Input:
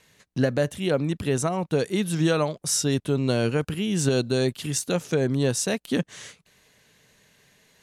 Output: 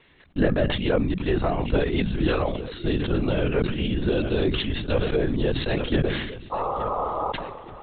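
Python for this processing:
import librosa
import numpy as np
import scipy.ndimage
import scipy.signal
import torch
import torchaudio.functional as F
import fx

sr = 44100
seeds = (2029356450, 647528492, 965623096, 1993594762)

p1 = fx.rider(x, sr, range_db=5, speed_s=0.5)
p2 = fx.spec_paint(p1, sr, seeds[0], shape='noise', start_s=6.51, length_s=0.81, low_hz=360.0, high_hz=1300.0, level_db=-27.0)
p3 = p2 + fx.echo_feedback(p2, sr, ms=868, feedback_pct=40, wet_db=-16.0, dry=0)
p4 = fx.lpc_vocoder(p3, sr, seeds[1], excitation='whisper', order=16)
y = fx.sustainer(p4, sr, db_per_s=46.0)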